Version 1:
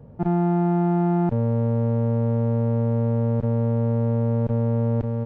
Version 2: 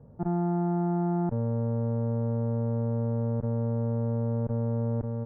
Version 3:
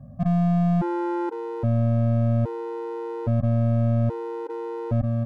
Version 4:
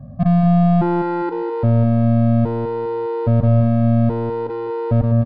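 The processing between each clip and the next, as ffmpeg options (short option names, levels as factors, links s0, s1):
-af "lowpass=f=1600:w=0.5412,lowpass=f=1600:w=1.3066,volume=0.473"
-af "aeval=exprs='clip(val(0),-1,0.0266)':c=same,afftfilt=real='re*gt(sin(2*PI*0.61*pts/sr)*(1-2*mod(floor(b*sr/1024/260),2)),0)':imag='im*gt(sin(2*PI*0.61*pts/sr)*(1-2*mod(floor(b*sr/1024/260),2)),0)':win_size=1024:overlap=0.75,volume=2.82"
-af "aecho=1:1:203|406|609:0.316|0.098|0.0304,aresample=11025,aresample=44100,volume=2.24"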